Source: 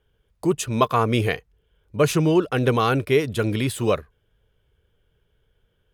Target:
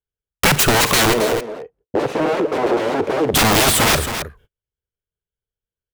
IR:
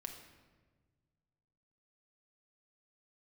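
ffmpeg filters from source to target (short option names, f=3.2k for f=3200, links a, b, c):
-filter_complex "[0:a]agate=range=-50dB:threshold=-48dB:ratio=16:detection=peak,acompressor=threshold=-23dB:ratio=8,aeval=exprs='(mod(23.7*val(0)+1,2)-1)/23.7':c=same,asplit=3[a][b][c];[a]afade=t=out:st=1.12:d=0.02[d];[b]bandpass=f=460:t=q:w=1.9:csg=0,afade=t=in:st=1.12:d=0.02,afade=t=out:st=3.33:d=0.02[e];[c]afade=t=in:st=3.33:d=0.02[f];[d][e][f]amix=inputs=3:normalize=0,asoftclip=type=tanh:threshold=-29dB,aecho=1:1:41|110|271:0.15|0.112|0.224,alimiter=level_in=31dB:limit=-1dB:release=50:level=0:latency=1,volume=-7.5dB"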